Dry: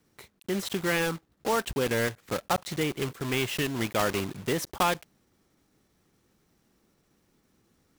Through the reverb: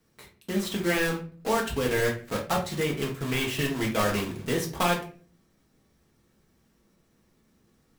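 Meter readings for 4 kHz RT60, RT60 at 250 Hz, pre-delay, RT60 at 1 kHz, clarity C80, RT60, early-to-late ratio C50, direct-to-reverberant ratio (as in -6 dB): 0.30 s, 0.60 s, 4 ms, 0.35 s, 14.5 dB, 0.45 s, 9.0 dB, -1.0 dB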